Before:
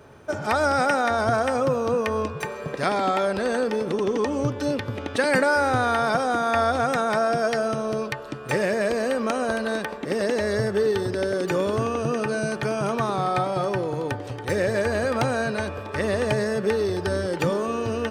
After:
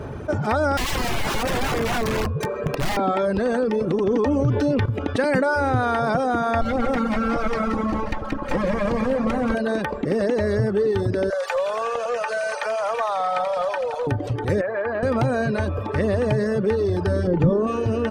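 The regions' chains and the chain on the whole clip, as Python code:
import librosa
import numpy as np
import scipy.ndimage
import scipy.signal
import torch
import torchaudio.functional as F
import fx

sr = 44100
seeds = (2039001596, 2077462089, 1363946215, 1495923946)

y = fx.chain(x, sr, fx.high_shelf(hz=9100.0, db=-9.5),
    fx.overflow_wrap(gain_db=20.5), at=(0.77, 2.97))
y = fx.chain(y, sr, fx.high_shelf(hz=10000.0, db=-5.5),
    fx.env_flatten(amount_pct=70), at=(4.06, 4.86))
y = fx.chain(y, sr, fx.lower_of_two(delay_ms=3.7),
    fx.high_shelf(hz=4200.0, db=-5.5),
    fx.echo_split(split_hz=770.0, low_ms=97, high_ms=180, feedback_pct=52, wet_db=-7), at=(6.61, 9.55))
y = fx.chain(y, sr, fx.steep_highpass(hz=480.0, slope=96),
    fx.echo_wet_highpass(ms=85, feedback_pct=72, hz=2100.0, wet_db=-4.5),
    fx.doppler_dist(depth_ms=0.1), at=(11.3, 14.07))
y = fx.chain(y, sr, fx.bandpass_q(hz=1300.0, q=0.78),
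    fx.air_absorb(metres=240.0), at=(14.61, 15.03))
y = fx.chain(y, sr, fx.lowpass(hz=9200.0, slope=12),
    fx.tilt_eq(slope=-3.0), at=(17.27, 17.67))
y = fx.dereverb_blind(y, sr, rt60_s=0.71)
y = fx.tilt_eq(y, sr, slope=-2.5)
y = fx.env_flatten(y, sr, amount_pct=50)
y = F.gain(torch.from_numpy(y), -6.0).numpy()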